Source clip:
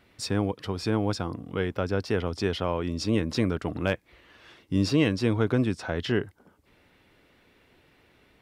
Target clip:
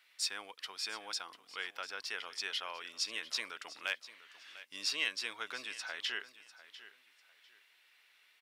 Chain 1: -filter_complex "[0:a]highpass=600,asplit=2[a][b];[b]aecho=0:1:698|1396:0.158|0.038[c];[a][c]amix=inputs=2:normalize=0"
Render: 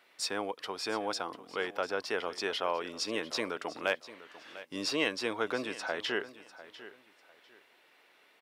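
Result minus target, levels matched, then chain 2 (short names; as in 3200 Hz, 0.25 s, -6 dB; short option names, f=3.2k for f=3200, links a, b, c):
500 Hz band +14.0 dB
-filter_complex "[0:a]highpass=1.9k,asplit=2[a][b];[b]aecho=0:1:698|1396:0.158|0.038[c];[a][c]amix=inputs=2:normalize=0"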